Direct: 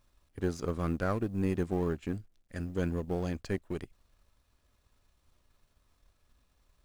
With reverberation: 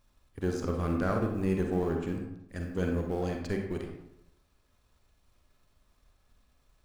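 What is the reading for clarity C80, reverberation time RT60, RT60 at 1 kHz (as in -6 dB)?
7.0 dB, 0.85 s, 0.80 s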